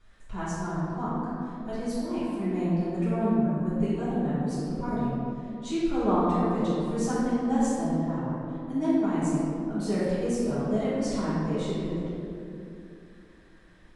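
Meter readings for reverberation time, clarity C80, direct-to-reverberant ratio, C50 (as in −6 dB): 2.7 s, −1.5 dB, −12.5 dB, −3.5 dB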